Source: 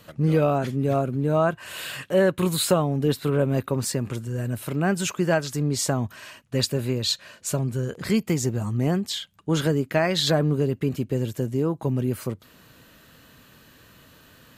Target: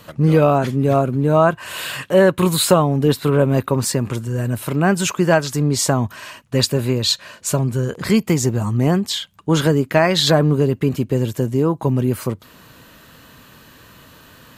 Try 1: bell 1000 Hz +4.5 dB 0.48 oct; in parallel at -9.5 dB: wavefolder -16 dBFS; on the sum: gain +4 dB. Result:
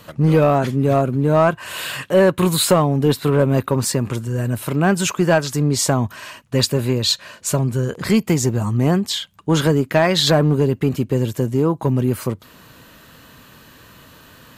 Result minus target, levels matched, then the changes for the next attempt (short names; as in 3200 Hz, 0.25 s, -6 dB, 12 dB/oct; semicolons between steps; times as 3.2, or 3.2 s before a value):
wavefolder: distortion +31 dB
change: wavefolder -9 dBFS